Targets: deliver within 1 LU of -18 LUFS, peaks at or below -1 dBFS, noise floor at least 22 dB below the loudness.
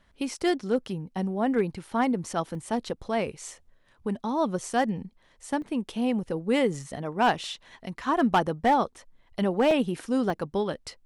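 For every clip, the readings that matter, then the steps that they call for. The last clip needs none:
clipped 0.3%; flat tops at -15.0 dBFS; dropouts 4; longest dropout 1.9 ms; loudness -28.0 LUFS; peak -15.0 dBFS; loudness target -18.0 LUFS
-> clip repair -15 dBFS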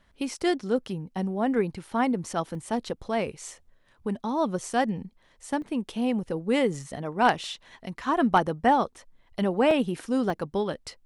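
clipped 0.0%; dropouts 4; longest dropout 1.9 ms
-> interpolate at 2.55/5.62/9.71/10.3, 1.9 ms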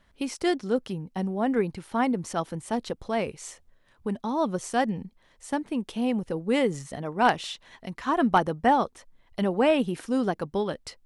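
dropouts 0; loudness -27.5 LUFS; peak -6.0 dBFS; loudness target -18.0 LUFS
-> gain +9.5 dB; limiter -1 dBFS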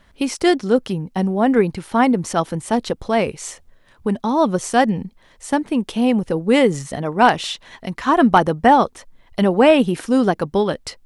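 loudness -18.0 LUFS; peak -1.0 dBFS; noise floor -53 dBFS

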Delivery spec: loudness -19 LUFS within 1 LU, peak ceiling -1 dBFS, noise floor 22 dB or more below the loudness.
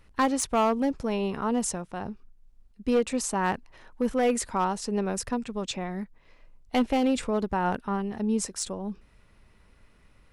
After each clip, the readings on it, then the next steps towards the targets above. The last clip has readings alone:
clipped 0.7%; flat tops at -17.5 dBFS; loudness -28.5 LUFS; peak -17.5 dBFS; loudness target -19.0 LUFS
-> clip repair -17.5 dBFS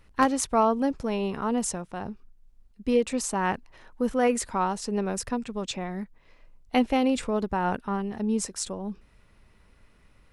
clipped 0.0%; loudness -27.5 LUFS; peak -8.5 dBFS; loudness target -19.0 LUFS
-> gain +8.5 dB; limiter -1 dBFS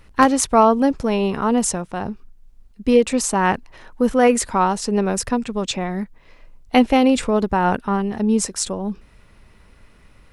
loudness -19.0 LUFS; peak -1.0 dBFS; noise floor -51 dBFS

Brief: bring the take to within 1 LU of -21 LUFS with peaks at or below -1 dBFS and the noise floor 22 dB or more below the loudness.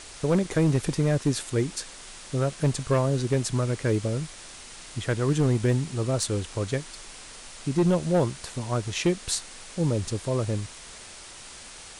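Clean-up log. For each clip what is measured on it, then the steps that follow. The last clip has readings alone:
clipped 0.8%; flat tops at -16.0 dBFS; noise floor -44 dBFS; noise floor target -49 dBFS; loudness -26.5 LUFS; peak -16.0 dBFS; loudness target -21.0 LUFS
-> clip repair -16 dBFS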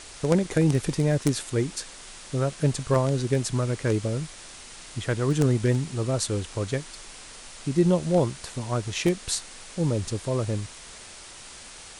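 clipped 0.0%; noise floor -44 dBFS; noise floor target -48 dBFS
-> noise print and reduce 6 dB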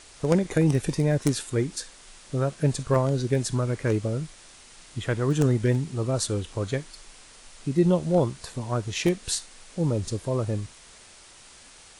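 noise floor -50 dBFS; loudness -26.0 LUFS; peak -7.0 dBFS; loudness target -21.0 LUFS
-> gain +5 dB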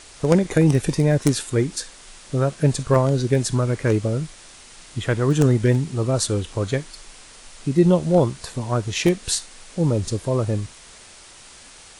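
loudness -21.0 LUFS; peak -2.0 dBFS; noise floor -45 dBFS

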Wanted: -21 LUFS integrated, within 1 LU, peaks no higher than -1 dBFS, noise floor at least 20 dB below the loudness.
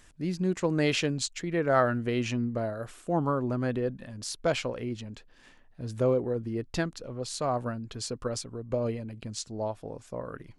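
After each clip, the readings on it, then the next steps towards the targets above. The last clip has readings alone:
loudness -31.0 LUFS; peak -10.0 dBFS; loudness target -21.0 LUFS
-> gain +10 dB; limiter -1 dBFS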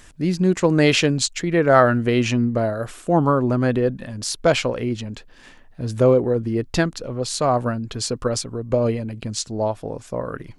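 loudness -21.0 LUFS; peak -1.0 dBFS; noise floor -47 dBFS

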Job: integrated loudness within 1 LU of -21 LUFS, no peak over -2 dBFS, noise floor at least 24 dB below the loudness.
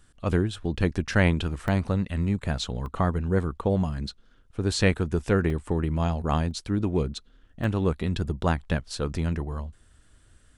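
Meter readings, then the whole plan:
dropouts 5; longest dropout 1.5 ms; loudness -27.0 LUFS; peak -6.5 dBFS; loudness target -21.0 LUFS
-> interpolate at 1.68/2.86/5.5/6.51/7.64, 1.5 ms; gain +6 dB; limiter -2 dBFS

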